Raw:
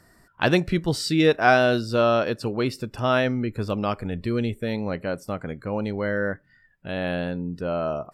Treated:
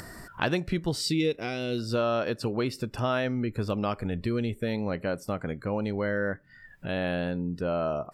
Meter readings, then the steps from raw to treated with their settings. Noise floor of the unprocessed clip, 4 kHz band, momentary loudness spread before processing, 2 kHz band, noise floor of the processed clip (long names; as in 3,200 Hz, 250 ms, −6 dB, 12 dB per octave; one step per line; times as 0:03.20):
−59 dBFS, −4.5 dB, 11 LU, −8.0 dB, −53 dBFS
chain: downward compressor 3 to 1, threshold −25 dBFS, peak gain reduction 10 dB
gain on a spectral selection 0:01.01–0:01.78, 580–1,900 Hz −12 dB
upward compression, threshold −32 dBFS